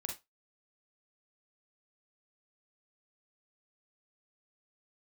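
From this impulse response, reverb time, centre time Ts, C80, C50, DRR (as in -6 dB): 0.20 s, 22 ms, 17.5 dB, 7.5 dB, 1.5 dB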